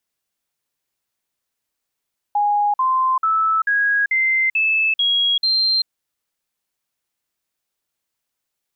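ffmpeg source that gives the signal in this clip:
ffmpeg -f lavfi -i "aevalsrc='0.188*clip(min(mod(t,0.44),0.39-mod(t,0.44))/0.005,0,1)*sin(2*PI*825*pow(2,floor(t/0.44)/3)*mod(t,0.44))':duration=3.52:sample_rate=44100" out.wav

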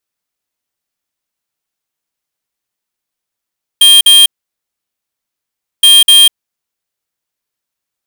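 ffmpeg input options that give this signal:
ffmpeg -f lavfi -i "aevalsrc='0.631*(2*lt(mod(3200*t,1),0.5)-1)*clip(min(mod(mod(t,2.02),0.25),0.2-mod(mod(t,2.02),0.25))/0.005,0,1)*lt(mod(t,2.02),0.5)':duration=4.04:sample_rate=44100" out.wav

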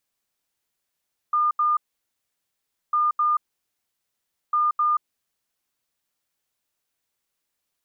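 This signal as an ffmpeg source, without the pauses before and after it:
ffmpeg -f lavfi -i "aevalsrc='0.133*sin(2*PI*1210*t)*clip(min(mod(mod(t,1.6),0.26),0.18-mod(mod(t,1.6),0.26))/0.005,0,1)*lt(mod(t,1.6),0.52)':duration=4.8:sample_rate=44100" out.wav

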